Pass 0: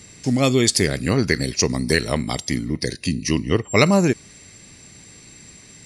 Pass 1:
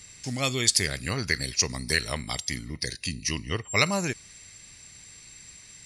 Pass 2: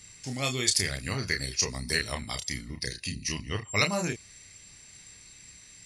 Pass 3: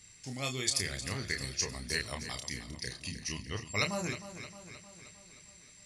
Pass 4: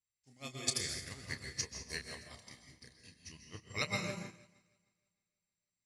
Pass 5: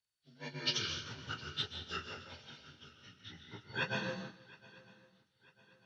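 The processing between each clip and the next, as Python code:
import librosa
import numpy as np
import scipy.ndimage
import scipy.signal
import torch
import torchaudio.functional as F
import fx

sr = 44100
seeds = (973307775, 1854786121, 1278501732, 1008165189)

y1 = fx.peak_eq(x, sr, hz=290.0, db=-13.0, octaves=2.9)
y1 = F.gain(torch.from_numpy(y1), -2.0).numpy()
y2 = fx.chorus_voices(y1, sr, voices=2, hz=0.5, base_ms=30, depth_ms=1.4, mix_pct=35)
y3 = fx.echo_feedback(y2, sr, ms=310, feedback_pct=58, wet_db=-12.0)
y3 = F.gain(torch.from_numpy(y3), -6.0).numpy()
y4 = fx.rev_plate(y3, sr, seeds[0], rt60_s=1.0, hf_ratio=0.9, predelay_ms=115, drr_db=0.5)
y4 = fx.upward_expand(y4, sr, threshold_db=-51.0, expansion=2.5)
y4 = F.gain(torch.from_numpy(y4), -2.5).numpy()
y5 = fx.partial_stretch(y4, sr, pct=85)
y5 = fx.echo_swing(y5, sr, ms=949, ratio=3, feedback_pct=43, wet_db=-22)
y5 = F.gain(torch.from_numpy(y5), 2.5).numpy()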